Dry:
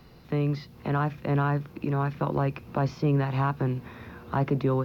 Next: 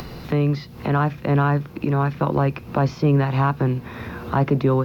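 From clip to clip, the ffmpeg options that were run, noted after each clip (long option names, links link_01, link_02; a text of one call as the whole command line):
ffmpeg -i in.wav -af "acompressor=mode=upward:threshold=-31dB:ratio=2.5,volume=6.5dB" out.wav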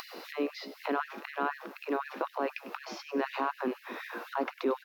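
ffmpeg -i in.wav -filter_complex "[0:a]alimiter=limit=-14.5dB:level=0:latency=1:release=95,asplit=6[link_01][link_02][link_03][link_04][link_05][link_06];[link_02]adelay=99,afreqshift=64,volume=-15.5dB[link_07];[link_03]adelay=198,afreqshift=128,volume=-21.5dB[link_08];[link_04]adelay=297,afreqshift=192,volume=-27.5dB[link_09];[link_05]adelay=396,afreqshift=256,volume=-33.6dB[link_10];[link_06]adelay=495,afreqshift=320,volume=-39.6dB[link_11];[link_01][link_07][link_08][link_09][link_10][link_11]amix=inputs=6:normalize=0,afftfilt=real='re*gte(b*sr/1024,210*pow(1700/210,0.5+0.5*sin(2*PI*4*pts/sr)))':imag='im*gte(b*sr/1024,210*pow(1700/210,0.5+0.5*sin(2*PI*4*pts/sr)))':win_size=1024:overlap=0.75,volume=-3.5dB" out.wav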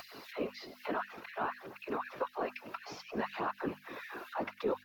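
ffmpeg -i in.wav -af "afftfilt=real='hypot(re,im)*cos(2*PI*random(0))':imag='hypot(re,im)*sin(2*PI*random(1))':win_size=512:overlap=0.75,bandreject=frequency=50:width_type=h:width=6,bandreject=frequency=100:width_type=h:width=6,bandreject=frequency=150:width_type=h:width=6,bandreject=frequency=200:width_type=h:width=6,bandreject=frequency=250:width_type=h:width=6,aphaser=in_gain=1:out_gain=1:delay=3.5:decay=0.3:speed=0.57:type=triangular,volume=1.5dB" out.wav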